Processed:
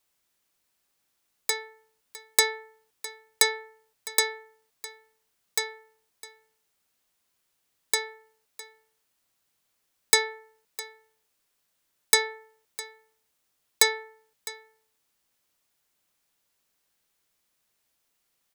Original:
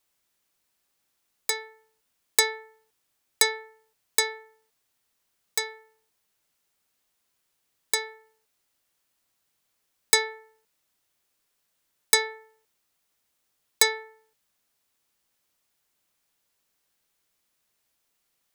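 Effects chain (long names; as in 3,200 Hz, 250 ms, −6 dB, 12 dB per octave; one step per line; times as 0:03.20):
single-tap delay 657 ms −17.5 dB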